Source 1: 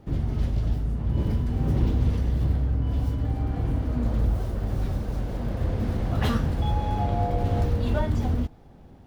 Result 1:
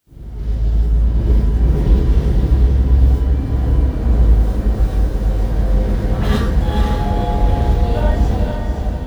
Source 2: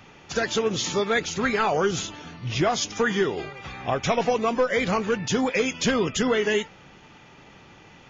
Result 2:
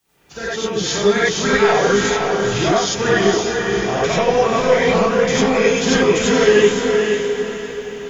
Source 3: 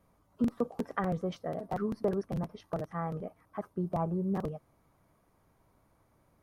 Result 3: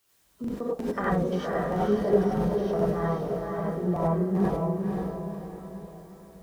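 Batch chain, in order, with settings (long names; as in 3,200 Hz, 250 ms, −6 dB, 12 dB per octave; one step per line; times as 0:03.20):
fade in at the beginning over 0.84 s
feedback delay with all-pass diffusion 515 ms, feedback 43%, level −3.5 dB
bit-depth reduction 12 bits, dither triangular
reverb whose tail is shaped and stops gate 120 ms rising, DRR −6 dB
level −1 dB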